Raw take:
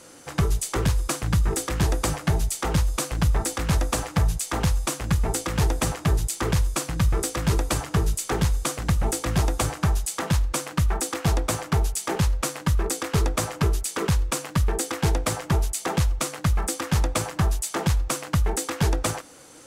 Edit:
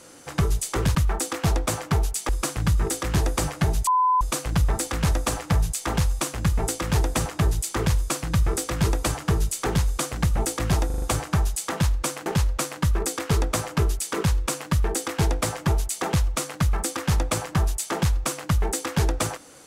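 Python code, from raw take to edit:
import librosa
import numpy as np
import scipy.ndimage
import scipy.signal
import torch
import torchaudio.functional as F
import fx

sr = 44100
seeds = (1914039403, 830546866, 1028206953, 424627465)

y = fx.edit(x, sr, fx.bleep(start_s=2.53, length_s=0.34, hz=1010.0, db=-16.5),
    fx.stutter(start_s=9.52, slice_s=0.04, count=5),
    fx.move(start_s=10.76, length_s=1.34, to_s=0.95), tone=tone)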